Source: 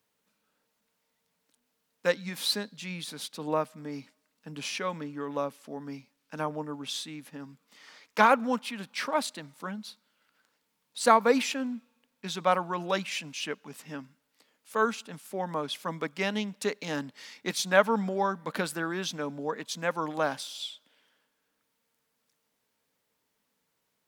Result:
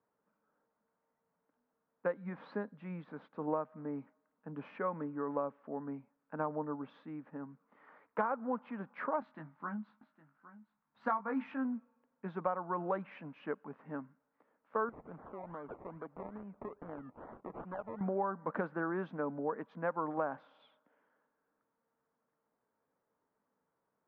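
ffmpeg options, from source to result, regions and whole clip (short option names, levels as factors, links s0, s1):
-filter_complex "[0:a]asettb=1/sr,asplit=3[s0][s1][s2];[s0]atrim=end=9.204[s3];[s1]atrim=start=9.2:end=11.65,asetpts=PTS-STARTPTS,afade=t=in:d=0.004:c=qsin,afade=t=out:st=2.446:d=0.004:c=qsin,equalizer=f=480:w=1.6:g=-14,asplit=2[s4][s5];[s5]adelay=19,volume=0.562[s6];[s4][s6]amix=inputs=2:normalize=0,atrim=end_sample=108045,aecho=1:1:811:0.15,atrim=end_sample=108045[s7];[s2]atrim=start=11.646[s8];[s3][s7]acrossfade=d=0.004:c1=hsin:c2=qsin[s9];[s9][s8]acrossfade=d=0.004:c1=qsin:c2=hsin,asettb=1/sr,asplit=3[s10][s11][s12];[s10]atrim=end=14.894[s13];[s11]atrim=start=14.89:end=18.01,asetpts=PTS-STARTPTS,afade=t=in:d=0.004:c=qsin,afade=t=out:st=3.116:d=0.004:c=qsin,acompressor=threshold=0.00708:ratio=3:attack=3.2:release=140:knee=1:detection=peak,acrusher=samples=23:mix=1:aa=0.000001:lfo=1:lforange=13.8:lforate=2.4[s14];[s12]atrim=start=18.006[s15];[s13][s14]acrossfade=d=0.004:c1=hsin:c2=qsin[s16];[s16][s15]acrossfade=d=0.004:c1=qsin:c2=hsin,lowpass=f=1400:w=0.5412,lowpass=f=1400:w=1.3066,lowshelf=f=170:g=-7.5,acompressor=threshold=0.0316:ratio=10"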